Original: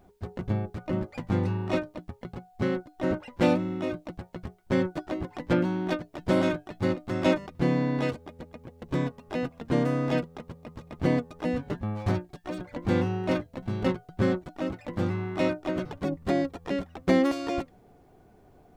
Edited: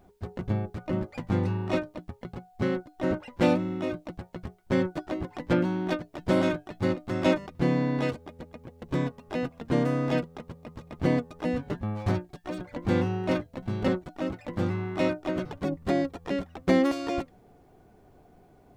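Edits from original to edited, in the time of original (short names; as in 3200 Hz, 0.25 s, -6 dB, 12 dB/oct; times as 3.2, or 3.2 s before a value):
13.88–14.28 cut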